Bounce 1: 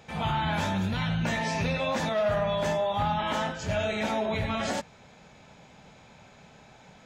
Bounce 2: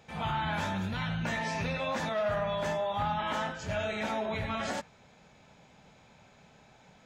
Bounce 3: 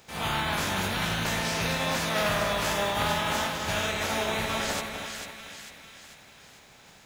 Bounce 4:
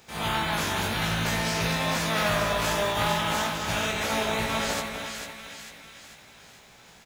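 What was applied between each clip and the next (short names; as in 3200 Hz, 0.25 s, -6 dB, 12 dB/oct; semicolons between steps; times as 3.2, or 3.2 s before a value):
dynamic EQ 1400 Hz, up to +4 dB, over -41 dBFS, Q 0.99; gain -5.5 dB
spectral contrast lowered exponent 0.5; split-band echo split 1500 Hz, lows 0.253 s, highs 0.446 s, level -6 dB; gain +3 dB
doubler 18 ms -5.5 dB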